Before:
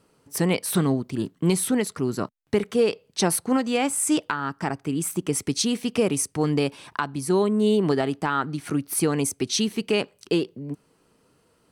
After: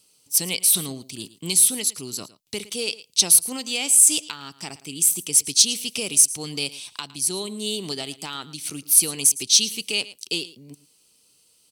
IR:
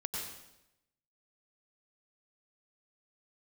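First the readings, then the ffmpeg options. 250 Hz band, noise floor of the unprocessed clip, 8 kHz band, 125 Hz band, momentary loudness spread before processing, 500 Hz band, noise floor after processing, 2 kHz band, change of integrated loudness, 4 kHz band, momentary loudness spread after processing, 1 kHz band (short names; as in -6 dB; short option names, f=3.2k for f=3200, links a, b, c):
-11.5 dB, -65 dBFS, +12.0 dB, -11.5 dB, 7 LU, -11.5 dB, -61 dBFS, -1.5 dB, +5.5 dB, +8.5 dB, 19 LU, -11.5 dB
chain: -af "aecho=1:1:111:0.126,aexciter=amount=9.9:drive=6:freq=2.5k,volume=-11.5dB"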